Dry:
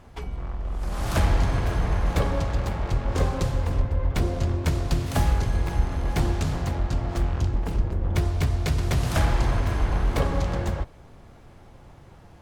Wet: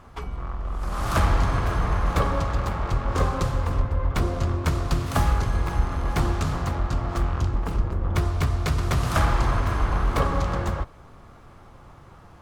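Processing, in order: bell 1200 Hz +9.5 dB 0.56 oct

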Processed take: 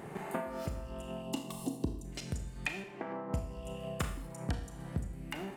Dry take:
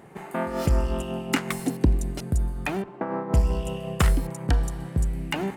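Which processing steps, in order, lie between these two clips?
1.22–2.05 spectral gain 1200–2600 Hz -18 dB; 2.12–3.13 band shelf 3800 Hz +10 dB 2.4 oct; compressor 16:1, threshold -40 dBFS, peak gain reduction 26 dB; gate -39 dBFS, range -10 dB; on a send: reverb RT60 0.65 s, pre-delay 26 ms, DRR 6 dB; on the sum: gain +12.5 dB

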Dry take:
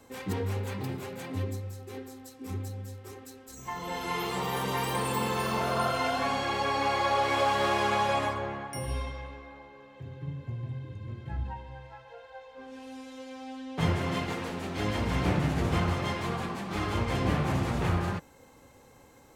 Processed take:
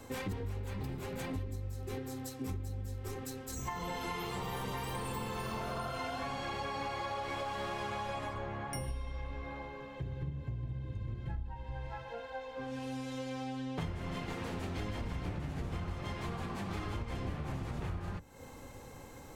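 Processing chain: octaver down 1 oct, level -6 dB; low shelf 81 Hz +8.5 dB; compressor 10:1, threshold -40 dBFS, peak gain reduction 21.5 dB; gain +4.5 dB

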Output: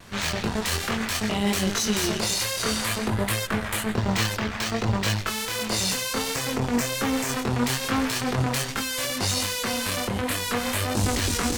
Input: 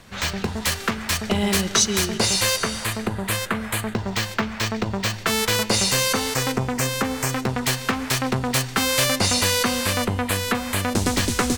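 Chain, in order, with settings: in parallel at +2 dB: negative-ratio compressor -25 dBFS; on the sum: limiter -9.5 dBFS, peak gain reduction 9.5 dB; chorus voices 2, 0.59 Hz, delay 23 ms, depth 4.5 ms; added harmonics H 3 -19 dB, 8 -23 dB, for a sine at -9 dBFS; vibrato 1.3 Hz 36 cents

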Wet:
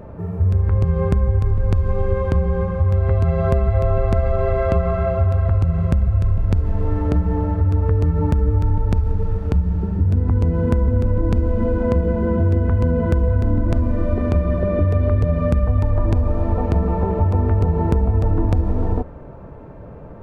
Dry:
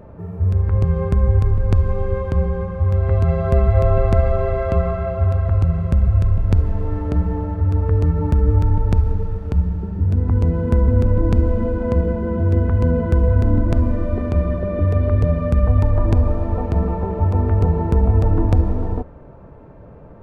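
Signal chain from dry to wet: compressor, threshold -17 dBFS, peak gain reduction 8 dB; gain +4 dB

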